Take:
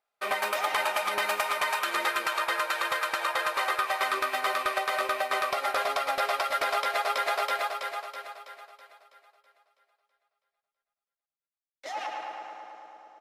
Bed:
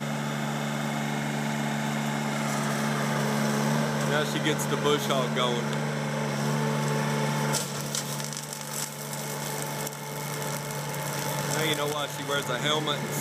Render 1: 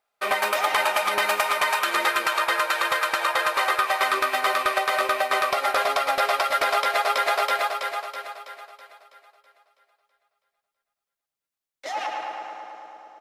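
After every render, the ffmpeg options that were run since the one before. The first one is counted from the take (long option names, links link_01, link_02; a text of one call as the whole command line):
ffmpeg -i in.wav -af "volume=5.5dB" out.wav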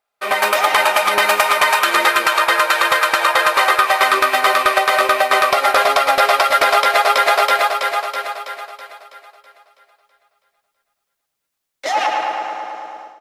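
ffmpeg -i in.wav -af "dynaudnorm=framelen=210:gausssize=3:maxgain=11.5dB" out.wav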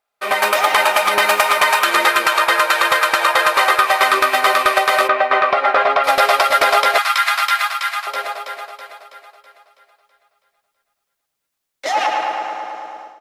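ffmpeg -i in.wav -filter_complex "[0:a]asettb=1/sr,asplit=3[link_01][link_02][link_03];[link_01]atrim=end=0.584[link_04];[link_02]atrim=start=0.58:end=1.87,asetpts=PTS-STARTPTS,afade=type=in:duration=0.004:curve=qsin,afade=type=out:start_time=1.286:duration=0.004:curve=qsin,acrusher=bits=6:mix=0:aa=0.5[link_05];[link_03]atrim=start=1.866[link_06];[link_04][link_05]acrossfade=duration=0.004:curve1=hsin:curve2=qsin[link_07];[link_07][link_06]acrossfade=duration=0.004:curve1=qsin:curve2=hsin,asplit=3[link_08][link_09][link_10];[link_08]afade=type=out:start_time=5.07:duration=0.02[link_11];[link_09]highpass=120,lowpass=2400,afade=type=in:start_time=5.07:duration=0.02,afade=type=out:start_time=6.03:duration=0.02[link_12];[link_10]afade=type=in:start_time=6.03:duration=0.02[link_13];[link_11][link_12][link_13]amix=inputs=3:normalize=0,asettb=1/sr,asplit=3[link_14][link_15][link_16];[link_14]atrim=end=6.984[link_17];[link_15]atrim=start=6.98:end=8.07,asetpts=PTS-STARTPTS,afade=type=in:duration=0.004:curve=qsin,afade=type=out:start_time=1.086:duration=0.004:curve=qsin,highpass=frequency=1100:width=0.5412,highpass=frequency=1100:width=1.3066[link_18];[link_16]atrim=start=8.066[link_19];[link_17][link_18]acrossfade=duration=0.004:curve1=hsin:curve2=qsin[link_20];[link_20][link_19]acrossfade=duration=0.004:curve1=qsin:curve2=hsin" out.wav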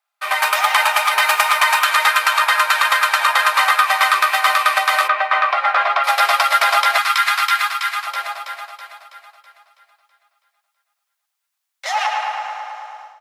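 ffmpeg -i in.wav -af "highpass=frequency=790:width=0.5412,highpass=frequency=790:width=1.3066" out.wav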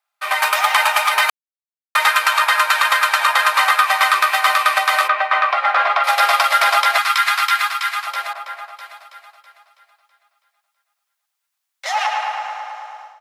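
ffmpeg -i in.wav -filter_complex "[0:a]asettb=1/sr,asplit=3[link_01][link_02][link_03];[link_01]atrim=end=5.584[link_04];[link_02]atrim=start=5.58:end=6.7,asetpts=PTS-STARTPTS,afade=type=in:duration=0.004:curve=qsin,afade=type=out:start_time=1.116:duration=0.004:curve=qsin,asplit=2[link_05][link_06];[link_06]adelay=44,volume=-11.5dB[link_07];[link_05][link_07]amix=inputs=2:normalize=0,atrim=end_sample=49392[link_08];[link_03]atrim=start=6.696[link_09];[link_04][link_08]acrossfade=duration=0.004:curve1=hsin:curve2=qsin[link_10];[link_10][link_09]acrossfade=duration=0.004:curve1=qsin:curve2=hsin,asettb=1/sr,asplit=3[link_11][link_12][link_13];[link_11]atrim=end=8.334[link_14];[link_12]atrim=start=8.33:end=8.77,asetpts=PTS-STARTPTS,afade=type=in:duration=0.004:curve=qsin,afade=type=out:start_time=0.436:duration=0.004:curve=qsin,adynamicequalizer=threshold=0.00631:dfrequency=2600:dqfactor=0.7:tfrequency=2600:tqfactor=0.7:attack=5:release=100:ratio=0.375:range=3.5:mode=cutabove:tftype=highshelf[link_15];[link_13]atrim=start=8.766[link_16];[link_14][link_15]acrossfade=duration=0.004:curve1=hsin:curve2=qsin[link_17];[link_17][link_16]acrossfade=duration=0.004:curve1=qsin:curve2=hsin,asplit=3[link_18][link_19][link_20];[link_18]atrim=end=1.3,asetpts=PTS-STARTPTS,afade=type=out:start_time=1.296:duration=0.004:curve=hsin[link_21];[link_19]atrim=start=1.3:end=1.95,asetpts=PTS-STARTPTS,volume=0[link_22];[link_20]atrim=start=1.95,asetpts=PTS-STARTPTS,afade=type=in:duration=0.004:curve=hsin[link_23];[link_21][link_22][link_23]concat=n=3:v=0:a=1" out.wav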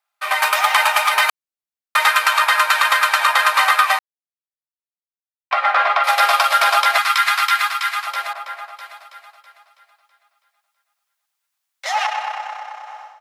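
ffmpeg -i in.wav -filter_complex "[0:a]asettb=1/sr,asplit=3[link_01][link_02][link_03];[link_01]atrim=end=6.294[link_04];[link_02]atrim=start=6.29:end=6.86,asetpts=PTS-STARTPTS,afade=type=in:duration=0.004:curve=qsin,afade=type=out:start_time=0.566:duration=0.004:curve=qsin,bandreject=frequency=2000:width=12[link_05];[link_03]atrim=start=6.856[link_06];[link_04][link_05]acrossfade=duration=0.004:curve1=hsin:curve2=qsin[link_07];[link_07][link_06]acrossfade=duration=0.004:curve1=qsin:curve2=hsin,asettb=1/sr,asplit=3[link_08][link_09][link_10];[link_08]atrim=end=12.064[link_11];[link_09]atrim=start=12.06:end=12.87,asetpts=PTS-STARTPTS,afade=type=in:duration=0.004:curve=qsin,afade=type=out:start_time=0.806:duration=0.004:curve=qsin,tremolo=f=32:d=0.519[link_12];[link_10]atrim=start=12.866[link_13];[link_11][link_12]acrossfade=duration=0.004:curve1=hsin:curve2=qsin[link_14];[link_14][link_13]acrossfade=duration=0.004:curve1=qsin:curve2=hsin,asplit=3[link_15][link_16][link_17];[link_15]atrim=end=3.99,asetpts=PTS-STARTPTS,afade=type=out:start_time=3.986:duration=0.004:curve=hsin[link_18];[link_16]atrim=start=3.99:end=5.51,asetpts=PTS-STARTPTS,volume=0[link_19];[link_17]atrim=start=5.51,asetpts=PTS-STARTPTS,afade=type=in:duration=0.004:curve=hsin[link_20];[link_18][link_19][link_20]concat=n=3:v=0:a=1" out.wav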